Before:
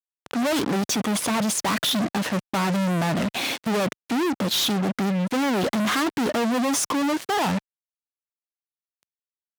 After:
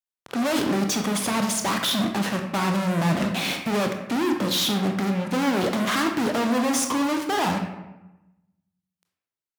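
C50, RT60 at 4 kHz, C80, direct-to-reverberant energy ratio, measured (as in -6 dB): 6.0 dB, 0.65 s, 8.5 dB, 3.5 dB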